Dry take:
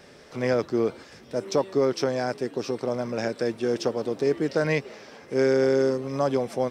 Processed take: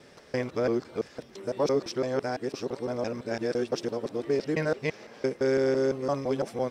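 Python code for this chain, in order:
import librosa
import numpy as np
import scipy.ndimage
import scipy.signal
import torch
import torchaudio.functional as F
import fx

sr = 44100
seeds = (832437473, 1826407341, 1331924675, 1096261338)

p1 = fx.local_reverse(x, sr, ms=169.0)
p2 = p1 + fx.echo_single(p1, sr, ms=1158, db=-24.0, dry=0)
y = F.gain(torch.from_numpy(p2), -3.5).numpy()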